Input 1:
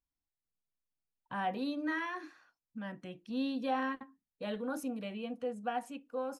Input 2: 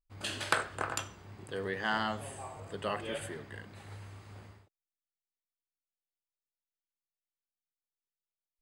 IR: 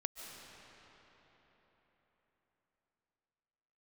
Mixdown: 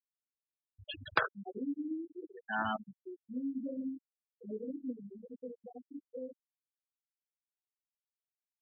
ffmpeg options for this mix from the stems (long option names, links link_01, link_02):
-filter_complex "[0:a]flanger=delay=18.5:depth=6.3:speed=1.3,lowpass=frequency=390:width_type=q:width=3.8,volume=-7dB,asplit=3[link_01][link_02][link_03];[link_02]volume=-5dB[link_04];[1:a]adelay=650,volume=0dB,asplit=2[link_05][link_06];[link_06]volume=-22.5dB[link_07];[link_03]apad=whole_len=408637[link_08];[link_05][link_08]sidechaincompress=threshold=-58dB:ratio=12:attack=7.8:release=390[link_09];[2:a]atrim=start_sample=2205[link_10];[link_04][link_07]amix=inputs=2:normalize=0[link_11];[link_11][link_10]afir=irnorm=-1:irlink=0[link_12];[link_01][link_09][link_12]amix=inputs=3:normalize=0,afftfilt=real='re*gte(hypot(re,im),0.0501)':imag='im*gte(hypot(re,im),0.0501)':win_size=1024:overlap=0.75"